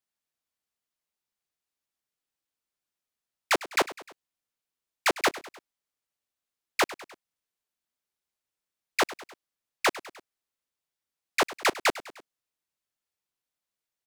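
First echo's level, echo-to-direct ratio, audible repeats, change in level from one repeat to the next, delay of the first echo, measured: −17.0 dB, −15.5 dB, 3, −5.0 dB, 101 ms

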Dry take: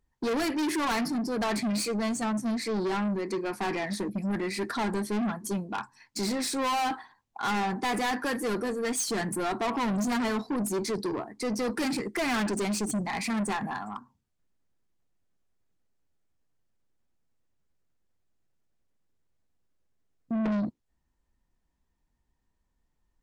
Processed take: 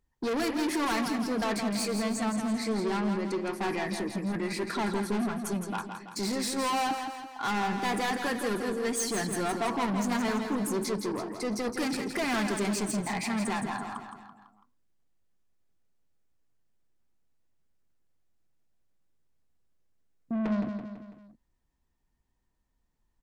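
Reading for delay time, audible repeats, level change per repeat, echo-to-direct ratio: 166 ms, 4, −6.0 dB, −5.5 dB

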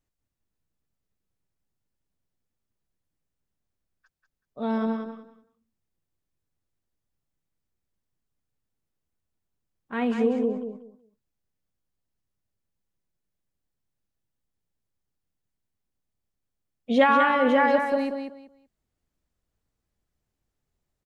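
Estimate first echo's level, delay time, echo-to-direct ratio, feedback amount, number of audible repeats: −6.5 dB, 189 ms, −6.5 dB, 21%, 3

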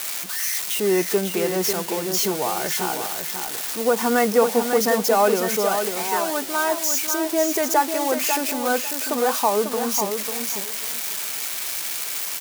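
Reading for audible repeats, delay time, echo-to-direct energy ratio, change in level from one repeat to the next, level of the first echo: 2, 546 ms, −7.0 dB, −14.5 dB, −7.0 dB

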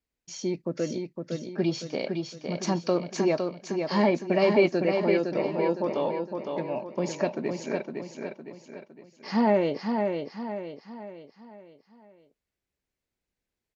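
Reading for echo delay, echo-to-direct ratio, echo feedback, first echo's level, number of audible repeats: 510 ms, −4.0 dB, 44%, −5.0 dB, 5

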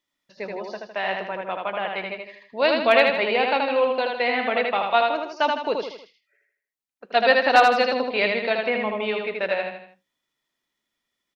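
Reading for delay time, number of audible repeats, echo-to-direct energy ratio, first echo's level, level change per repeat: 79 ms, 4, −2.5 dB, −3.5 dB, −7.0 dB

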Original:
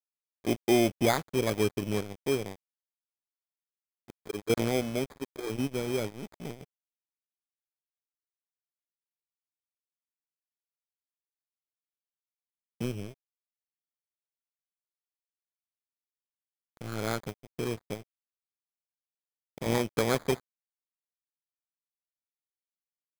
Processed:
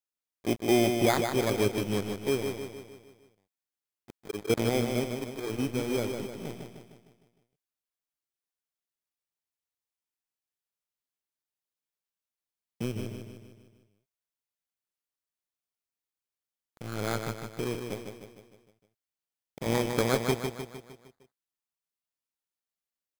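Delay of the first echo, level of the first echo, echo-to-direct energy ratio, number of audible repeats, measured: 153 ms, −6.0 dB, −4.5 dB, 6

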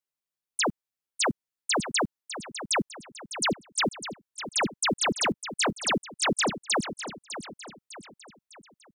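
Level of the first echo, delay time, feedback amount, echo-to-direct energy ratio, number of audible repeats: −11.5 dB, 603 ms, 44%, −10.5 dB, 4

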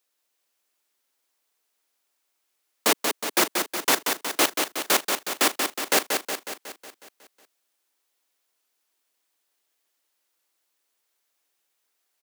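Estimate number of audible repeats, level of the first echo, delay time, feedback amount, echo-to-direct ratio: 7, −5.0 dB, 183 ms, 58%, −3.0 dB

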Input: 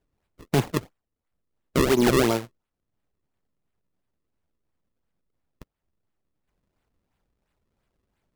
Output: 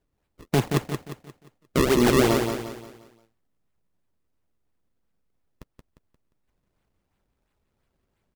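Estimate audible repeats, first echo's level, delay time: 4, −6.0 dB, 176 ms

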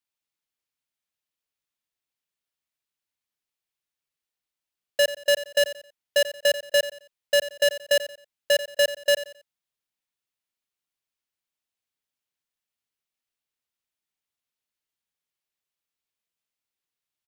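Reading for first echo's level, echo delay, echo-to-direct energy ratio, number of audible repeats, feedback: −14.0 dB, 89 ms, −13.5 dB, 3, 30%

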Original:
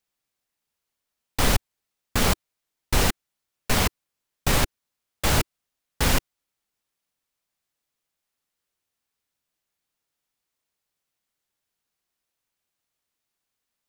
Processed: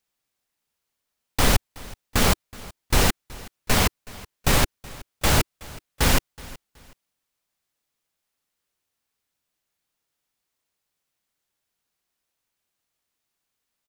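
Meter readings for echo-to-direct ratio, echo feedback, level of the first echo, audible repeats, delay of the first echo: −20.5 dB, 28%, −21.0 dB, 2, 373 ms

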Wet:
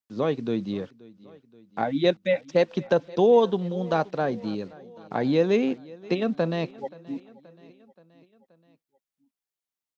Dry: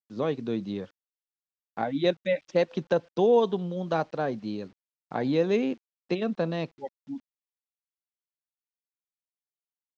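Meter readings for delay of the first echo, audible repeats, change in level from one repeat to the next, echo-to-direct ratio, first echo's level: 527 ms, 3, −4.5 dB, −20.0 dB, −22.0 dB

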